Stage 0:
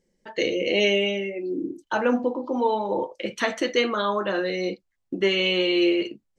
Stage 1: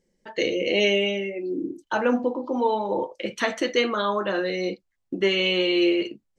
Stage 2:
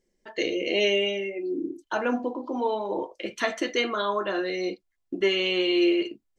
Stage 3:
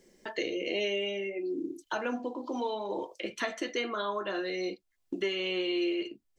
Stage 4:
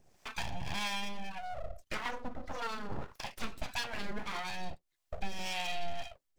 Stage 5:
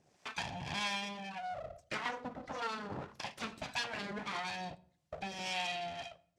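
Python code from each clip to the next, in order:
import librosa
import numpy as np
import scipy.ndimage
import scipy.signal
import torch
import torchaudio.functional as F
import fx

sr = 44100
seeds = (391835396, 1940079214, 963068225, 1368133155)

y1 = x
y2 = fx.peak_eq(y1, sr, hz=120.0, db=-2.5, octaves=2.3)
y2 = y2 + 0.36 * np.pad(y2, (int(2.9 * sr / 1000.0), 0))[:len(y2)]
y2 = F.gain(torch.from_numpy(y2), -2.5).numpy()
y3 = fx.band_squash(y2, sr, depth_pct=70)
y3 = F.gain(torch.from_numpy(y3), -7.0).numpy()
y4 = np.abs(y3)
y4 = fx.harmonic_tremolo(y4, sr, hz=1.7, depth_pct=70, crossover_hz=590.0)
y4 = F.gain(torch.from_numpy(y4), 1.0).numpy()
y5 = fx.bandpass_edges(y4, sr, low_hz=110.0, high_hz=8000.0)
y5 = fx.room_shoebox(y5, sr, seeds[0], volume_m3=970.0, walls='furnished', distance_m=0.41)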